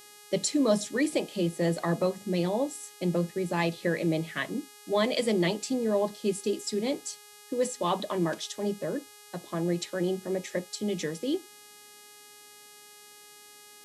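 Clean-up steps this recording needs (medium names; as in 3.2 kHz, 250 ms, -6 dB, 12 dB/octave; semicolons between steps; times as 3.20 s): de-hum 415.1 Hz, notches 30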